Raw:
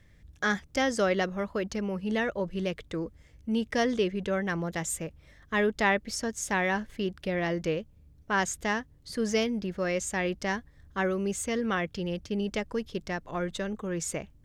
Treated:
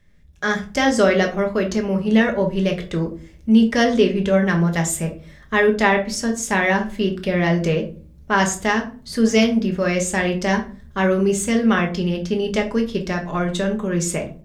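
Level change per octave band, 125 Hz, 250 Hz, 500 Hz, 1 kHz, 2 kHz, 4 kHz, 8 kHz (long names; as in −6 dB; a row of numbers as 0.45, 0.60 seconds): +13.0, +12.5, +10.0, +9.0, +9.0, +9.5, +9.0 decibels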